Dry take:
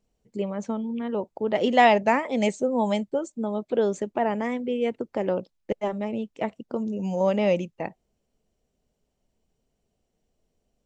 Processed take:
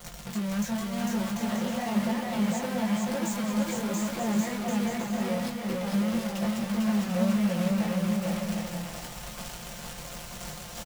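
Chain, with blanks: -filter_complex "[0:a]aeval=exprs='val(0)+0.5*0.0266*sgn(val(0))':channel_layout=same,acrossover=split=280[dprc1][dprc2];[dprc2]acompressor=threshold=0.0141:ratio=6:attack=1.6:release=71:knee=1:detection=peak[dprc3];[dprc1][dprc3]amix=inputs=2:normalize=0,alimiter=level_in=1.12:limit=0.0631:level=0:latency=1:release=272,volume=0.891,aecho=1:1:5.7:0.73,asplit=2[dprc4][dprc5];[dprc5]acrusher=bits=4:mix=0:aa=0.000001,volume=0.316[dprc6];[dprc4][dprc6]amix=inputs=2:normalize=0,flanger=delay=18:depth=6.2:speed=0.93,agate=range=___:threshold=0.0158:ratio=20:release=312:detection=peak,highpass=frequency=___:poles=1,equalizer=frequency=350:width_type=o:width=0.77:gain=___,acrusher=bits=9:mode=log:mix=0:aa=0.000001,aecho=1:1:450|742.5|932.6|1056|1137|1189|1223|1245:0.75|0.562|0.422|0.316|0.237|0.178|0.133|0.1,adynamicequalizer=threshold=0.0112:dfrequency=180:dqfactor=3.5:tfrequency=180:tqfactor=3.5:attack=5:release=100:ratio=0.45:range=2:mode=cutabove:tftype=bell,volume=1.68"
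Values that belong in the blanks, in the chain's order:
0.447, 59, -13.5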